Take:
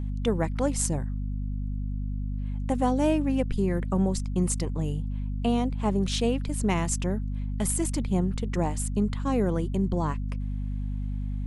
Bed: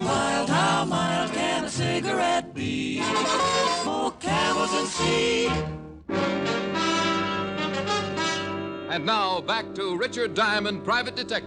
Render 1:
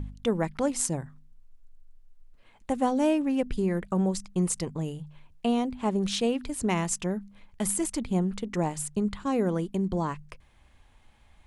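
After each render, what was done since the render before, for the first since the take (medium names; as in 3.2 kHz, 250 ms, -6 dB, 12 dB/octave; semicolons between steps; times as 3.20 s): de-hum 50 Hz, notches 5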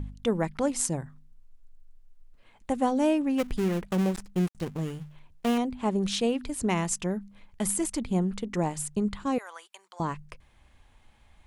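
3.38–5.58 s: dead-time distortion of 0.27 ms; 9.38–10.00 s: high-pass 940 Hz 24 dB/octave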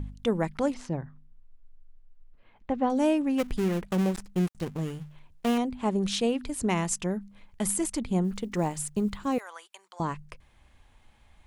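0.74–2.90 s: distance through air 250 m; 8.24–9.46 s: block-companded coder 7-bit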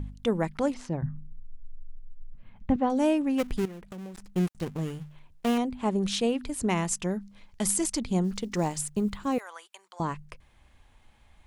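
1.02–2.76 s: resonant low shelf 270 Hz +12 dB, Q 1.5; 3.65–4.27 s: compression 4:1, threshold -40 dBFS; 7.04–8.81 s: peaking EQ 5.3 kHz +7.5 dB 1.1 oct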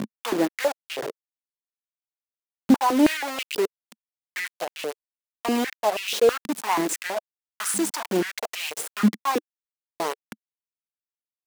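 bit crusher 5-bit; step-sequenced high-pass 6.2 Hz 220–2700 Hz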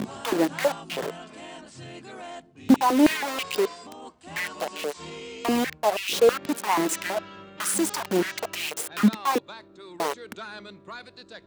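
add bed -16.5 dB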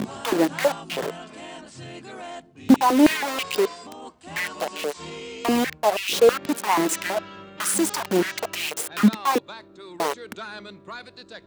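trim +2.5 dB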